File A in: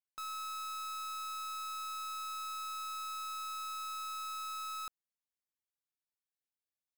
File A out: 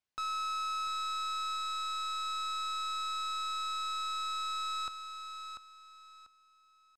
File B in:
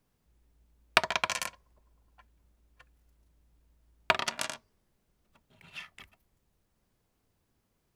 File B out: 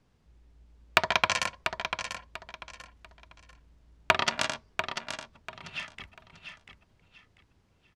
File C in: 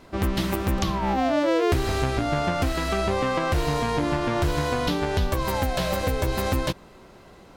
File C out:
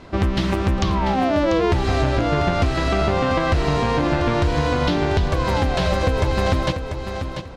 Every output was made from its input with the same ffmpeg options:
-filter_complex "[0:a]lowpass=5700,equalizer=frequency=80:width_type=o:width=1.5:gain=4,acompressor=threshold=-24dB:ratio=2.5,asoftclip=type=hard:threshold=-11.5dB,asplit=2[link_01][link_02];[link_02]aecho=0:1:692|1384|2076:0.398|0.107|0.029[link_03];[link_01][link_03]amix=inputs=2:normalize=0,volume=6.5dB"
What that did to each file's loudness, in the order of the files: +5.0, +1.0, +4.5 LU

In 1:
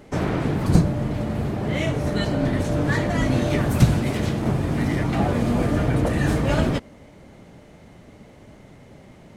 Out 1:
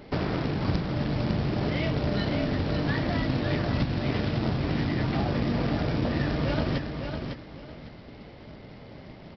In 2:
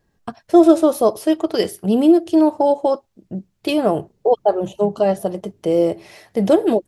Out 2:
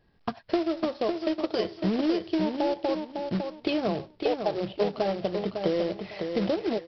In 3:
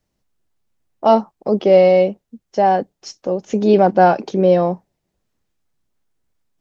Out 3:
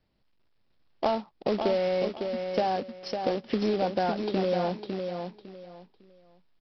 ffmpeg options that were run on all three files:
-af "acompressor=threshold=-24dB:ratio=12,aresample=11025,acrusher=bits=3:mode=log:mix=0:aa=0.000001,aresample=44100,aecho=1:1:554|1108|1662:0.501|0.12|0.0289"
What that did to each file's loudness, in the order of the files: −5.5, −11.5, −13.5 LU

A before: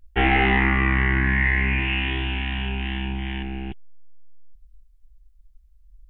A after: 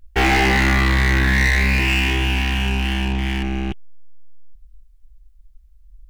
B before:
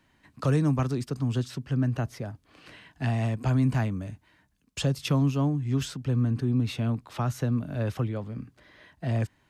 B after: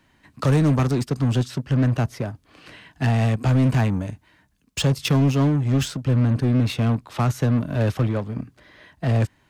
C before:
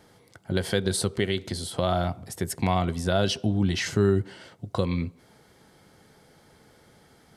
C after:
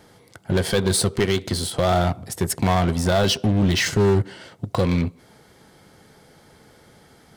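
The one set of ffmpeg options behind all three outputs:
-filter_complex "[0:a]asplit=2[link_01][link_02];[link_02]acrusher=bits=4:mix=0:aa=0.5,volume=-5dB[link_03];[link_01][link_03]amix=inputs=2:normalize=0,asoftclip=type=tanh:threshold=-17.5dB,volume=5dB"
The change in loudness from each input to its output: +4.0, +6.5, +5.5 LU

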